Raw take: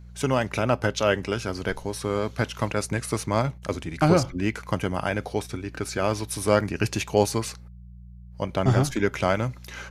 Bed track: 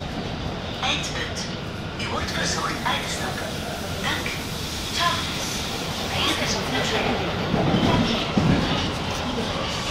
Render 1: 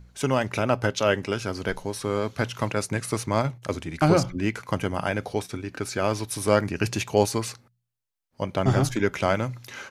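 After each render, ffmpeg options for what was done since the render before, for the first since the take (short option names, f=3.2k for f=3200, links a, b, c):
-af "bandreject=f=60:t=h:w=4,bandreject=f=120:t=h:w=4,bandreject=f=180:t=h:w=4"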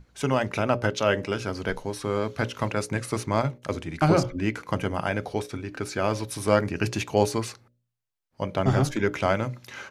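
-af "highshelf=f=5.3k:g=-5.5,bandreject=f=60:t=h:w=6,bandreject=f=120:t=h:w=6,bandreject=f=180:t=h:w=6,bandreject=f=240:t=h:w=6,bandreject=f=300:t=h:w=6,bandreject=f=360:t=h:w=6,bandreject=f=420:t=h:w=6,bandreject=f=480:t=h:w=6,bandreject=f=540:t=h:w=6,bandreject=f=600:t=h:w=6"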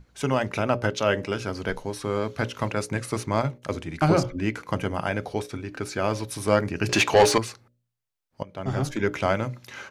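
-filter_complex "[0:a]asettb=1/sr,asplit=3[a][b][c];[a]atrim=end=6.894[d];[b]atrim=start=6.89:end=7.38,asetpts=PTS-STARTPTS,afade=t=in:d=0.004:c=qsin,afade=t=out:st=0.486:d=0.004:c=qsin,asplit=2[e][f];[f]highpass=f=720:p=1,volume=22dB,asoftclip=type=tanh:threshold=-6.5dB[g];[e][g]amix=inputs=2:normalize=0,lowpass=f=3.9k:p=1,volume=-6dB[h];[c]atrim=start=7.376[i];[d][h]acrossfade=d=0.004:c1=hsin:c2=qsin[j];[j][i]acrossfade=d=0.004:c1=qsin:c2=hsin,asplit=2[k][l];[k]atrim=end=8.43,asetpts=PTS-STARTPTS,afade=t=out:st=8.426:d=0.004:c=hsin:silence=0.11885[m];[l]atrim=start=8.43,asetpts=PTS-STARTPTS,afade=t=in:d=0.63:silence=0.11885[n];[m][n]concat=n=2:v=0:a=1"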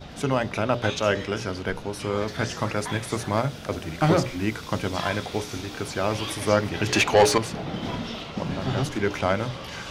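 -filter_complex "[1:a]volume=-11dB[a];[0:a][a]amix=inputs=2:normalize=0"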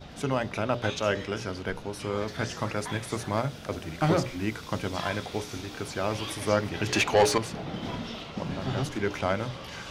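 -af "volume=-4dB"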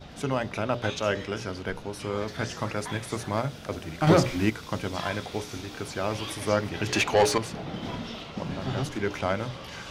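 -filter_complex "[0:a]asettb=1/sr,asplit=3[a][b][c];[a]atrim=end=4.074[d];[b]atrim=start=4.07:end=4.5,asetpts=PTS-STARTPTS,afade=t=in:d=0.004:c=qsin,afade=t=out:st=0.426:d=0.004:c=qsin,acontrast=42[e];[c]atrim=start=4.496[f];[d][e]acrossfade=d=0.004:c1=hsin:c2=qsin[g];[g][f]acrossfade=d=0.004:c1=qsin:c2=hsin"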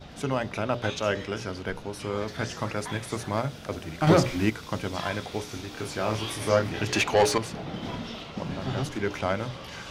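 -filter_complex "[0:a]asettb=1/sr,asplit=3[a][b][c];[a]atrim=end=5.754[d];[b]atrim=start=5.75:end=6.85,asetpts=PTS-STARTPTS,afade=t=in:d=0.004:c=qsin,afade=t=out:st=1.096:d=0.004:c=qsin,asplit=2[e][f];[f]adelay=27,volume=-4dB[g];[e][g]amix=inputs=2:normalize=0,atrim=end_sample=48510[h];[c]atrim=start=6.846[i];[d][h]acrossfade=d=0.004:c1=hsin:c2=qsin[j];[j][i]acrossfade=d=0.004:c1=qsin:c2=hsin"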